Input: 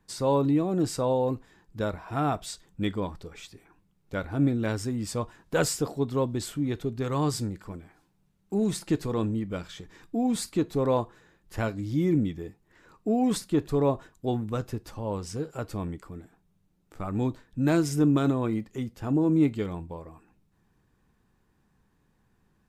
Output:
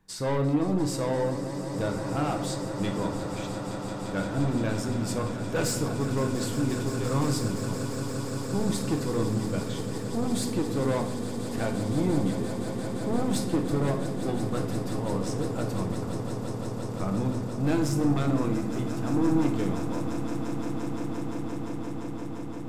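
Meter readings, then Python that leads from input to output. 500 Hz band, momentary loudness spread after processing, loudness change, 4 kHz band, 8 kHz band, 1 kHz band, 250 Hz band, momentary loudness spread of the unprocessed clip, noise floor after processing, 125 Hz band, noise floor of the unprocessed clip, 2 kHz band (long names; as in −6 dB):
−0.5 dB, 7 LU, −1.0 dB, +2.0 dB, +2.0 dB, 0.0 dB, +0.5 dB, 16 LU, −34 dBFS, +2.0 dB, −69 dBFS, +1.5 dB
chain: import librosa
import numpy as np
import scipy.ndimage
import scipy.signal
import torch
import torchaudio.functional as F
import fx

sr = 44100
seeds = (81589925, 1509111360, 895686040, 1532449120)

y = 10.0 ** (-23.5 / 20.0) * np.tanh(x / 10.0 ** (-23.5 / 20.0))
y = fx.echo_swell(y, sr, ms=173, loudest=8, wet_db=-13.5)
y = fx.room_shoebox(y, sr, seeds[0], volume_m3=310.0, walls='mixed', distance_m=0.63)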